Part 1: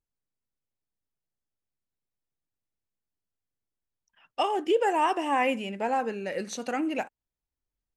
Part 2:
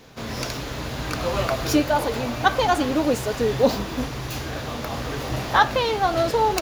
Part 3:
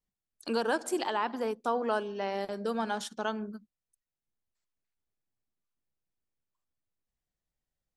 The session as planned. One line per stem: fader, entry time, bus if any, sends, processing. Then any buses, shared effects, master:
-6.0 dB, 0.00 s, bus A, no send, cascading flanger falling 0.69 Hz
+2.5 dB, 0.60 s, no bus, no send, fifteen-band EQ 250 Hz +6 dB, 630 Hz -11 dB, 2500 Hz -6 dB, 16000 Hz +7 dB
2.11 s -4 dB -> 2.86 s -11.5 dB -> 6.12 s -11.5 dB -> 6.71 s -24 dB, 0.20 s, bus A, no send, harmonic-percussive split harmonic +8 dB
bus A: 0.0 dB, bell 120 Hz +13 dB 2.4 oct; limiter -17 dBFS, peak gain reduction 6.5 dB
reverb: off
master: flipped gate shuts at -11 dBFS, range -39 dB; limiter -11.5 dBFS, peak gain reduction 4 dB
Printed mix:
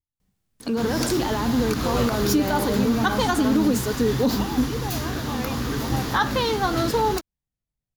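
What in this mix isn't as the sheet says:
stem 3 -4.0 dB -> +8.0 dB; master: missing flipped gate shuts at -11 dBFS, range -39 dB

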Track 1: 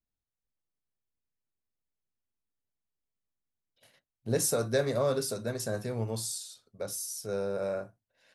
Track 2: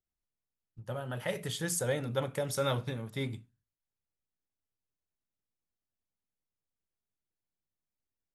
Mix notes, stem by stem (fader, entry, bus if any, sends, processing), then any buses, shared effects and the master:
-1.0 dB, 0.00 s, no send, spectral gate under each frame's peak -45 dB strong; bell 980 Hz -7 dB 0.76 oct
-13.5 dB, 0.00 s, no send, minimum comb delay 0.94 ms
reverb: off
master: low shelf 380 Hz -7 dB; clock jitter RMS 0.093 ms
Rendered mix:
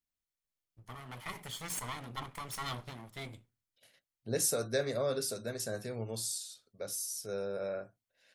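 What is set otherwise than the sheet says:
stem 2 -13.5 dB -> -3.0 dB; master: missing clock jitter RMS 0.093 ms

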